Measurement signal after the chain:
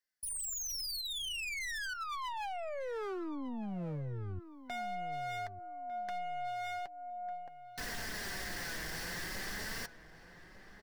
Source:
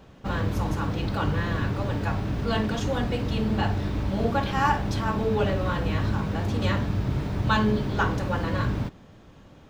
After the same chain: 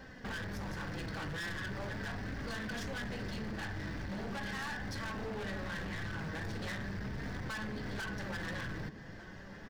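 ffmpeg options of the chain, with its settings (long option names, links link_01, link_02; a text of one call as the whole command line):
ffmpeg -i in.wav -filter_complex "[0:a]superequalizer=11b=3.98:14b=2.24,acompressor=threshold=-33dB:ratio=3,aeval=exprs='(tanh(44.7*val(0)+0.25)-tanh(0.25))/44.7':channel_layout=same,flanger=delay=3.5:depth=2.9:regen=48:speed=0.39:shape=triangular,aeval=exprs='0.0126*(abs(mod(val(0)/0.0126+3,4)-2)-1)':channel_layout=same,asplit=2[link_01][link_02];[link_02]adelay=1200,lowpass=frequency=1700:poles=1,volume=-12.5dB,asplit=2[link_03][link_04];[link_04]adelay=1200,lowpass=frequency=1700:poles=1,volume=0.3,asplit=2[link_05][link_06];[link_06]adelay=1200,lowpass=frequency=1700:poles=1,volume=0.3[link_07];[link_01][link_03][link_05][link_07]amix=inputs=4:normalize=0,volume=3dB" out.wav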